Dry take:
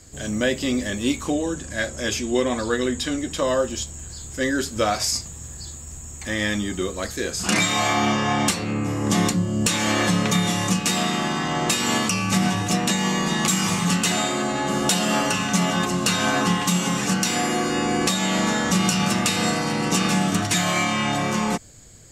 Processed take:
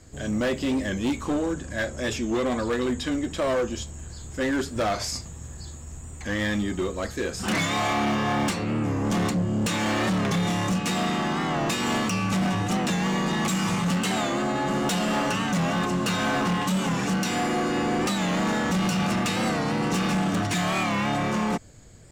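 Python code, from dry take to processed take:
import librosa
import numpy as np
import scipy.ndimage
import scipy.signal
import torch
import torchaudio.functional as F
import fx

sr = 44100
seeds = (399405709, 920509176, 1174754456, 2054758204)

y = fx.high_shelf(x, sr, hz=3500.0, db=-10.5)
y = np.clip(10.0 ** (21.0 / 20.0) * y, -1.0, 1.0) / 10.0 ** (21.0 / 20.0)
y = fx.record_warp(y, sr, rpm=45.0, depth_cents=100.0)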